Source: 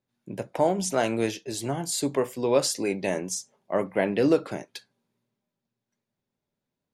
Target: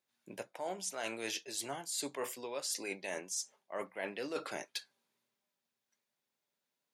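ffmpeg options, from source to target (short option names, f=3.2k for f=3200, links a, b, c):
-af "highpass=f=1.4k:p=1,areverse,acompressor=threshold=-39dB:ratio=12,areverse,volume=3.5dB"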